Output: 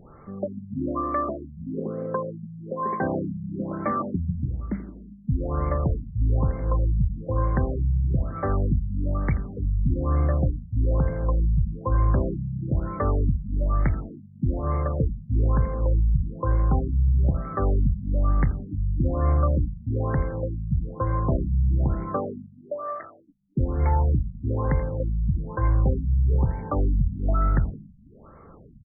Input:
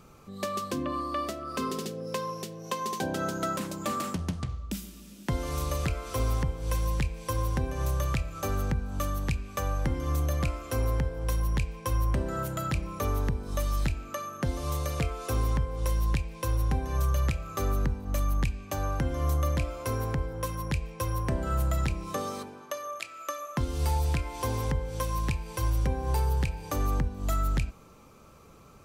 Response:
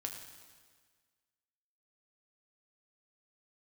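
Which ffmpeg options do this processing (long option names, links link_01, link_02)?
-filter_complex "[0:a]asplit=5[link_01][link_02][link_03][link_04][link_05];[link_02]adelay=82,afreqshift=53,volume=-17dB[link_06];[link_03]adelay=164,afreqshift=106,volume=-22.8dB[link_07];[link_04]adelay=246,afreqshift=159,volume=-28.7dB[link_08];[link_05]adelay=328,afreqshift=212,volume=-34.5dB[link_09];[link_01][link_06][link_07][link_08][link_09]amix=inputs=5:normalize=0,afftfilt=real='re*lt(b*sr/1024,210*pow(2300/210,0.5+0.5*sin(2*PI*1.1*pts/sr)))':imag='im*lt(b*sr/1024,210*pow(2300/210,0.5+0.5*sin(2*PI*1.1*pts/sr)))':win_size=1024:overlap=0.75,volume=6dB"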